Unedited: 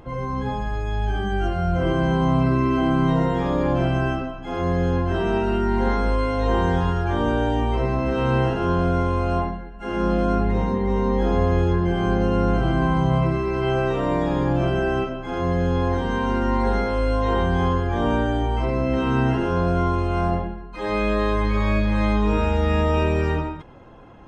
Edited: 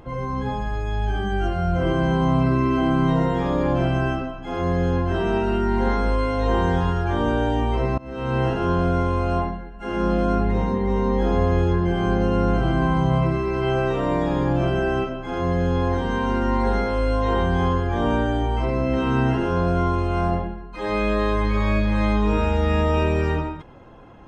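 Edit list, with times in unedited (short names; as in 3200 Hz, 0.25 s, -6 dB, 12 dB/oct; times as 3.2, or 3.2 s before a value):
7.98–8.49 fade in, from -24 dB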